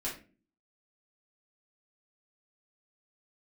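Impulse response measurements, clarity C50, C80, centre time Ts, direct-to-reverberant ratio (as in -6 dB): 7.5 dB, 13.5 dB, 27 ms, -8.0 dB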